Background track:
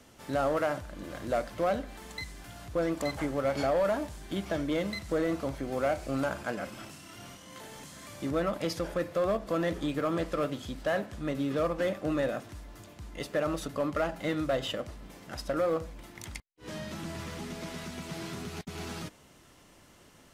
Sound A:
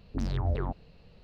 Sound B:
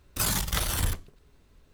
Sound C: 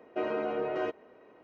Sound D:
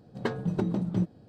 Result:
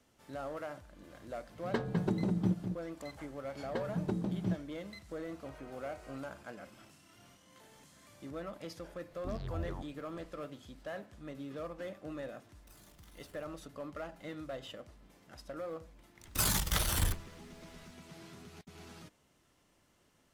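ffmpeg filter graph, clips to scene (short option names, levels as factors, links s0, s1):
-filter_complex "[4:a]asplit=2[s0][s1];[2:a]asplit=2[s2][s3];[0:a]volume=0.224[s4];[s0]asplit=2[s5][s6];[s6]adelay=204.1,volume=0.447,highshelf=f=4000:g=-4.59[s7];[s5][s7]amix=inputs=2:normalize=0[s8];[s1]dynaudnorm=f=110:g=5:m=2.24[s9];[3:a]highpass=740[s10];[s2]acompressor=threshold=0.00708:ratio=6:attack=3.2:release=140:knee=1:detection=peak[s11];[s8]atrim=end=1.28,asetpts=PTS-STARTPTS,volume=0.631,afade=t=in:d=0.004:c=hsin,afade=t=out:st=1.276:d=0.004:c=hsin,adelay=1490[s12];[s9]atrim=end=1.28,asetpts=PTS-STARTPTS,volume=0.211,afade=t=in:d=0.004:c=hsin,afade=t=out:st=1.276:d=0.004:c=hsin,adelay=3500[s13];[s10]atrim=end=1.43,asetpts=PTS-STARTPTS,volume=0.133,afade=t=in:d=0.004:c=hsin,afade=t=out:st=1.426:d=0.004:c=hsin,adelay=5280[s14];[1:a]atrim=end=1.23,asetpts=PTS-STARTPTS,volume=0.299,afade=t=in:d=0.004:c=hsin,afade=t=out:st=1.226:d=0.004:c=hsin,adelay=9100[s15];[s11]atrim=end=1.73,asetpts=PTS-STARTPTS,volume=0.158,afade=t=in:d=0.004:c=hsin,afade=t=out:st=1.726:d=0.004:c=hsin,adelay=12510[s16];[s3]atrim=end=1.73,asetpts=PTS-STARTPTS,volume=0.668,afade=t=in:d=0.004:c=hsin,afade=t=out:st=1.726:d=0.004:c=hsin,adelay=16190[s17];[s4][s12][s13][s14][s15][s16][s17]amix=inputs=7:normalize=0"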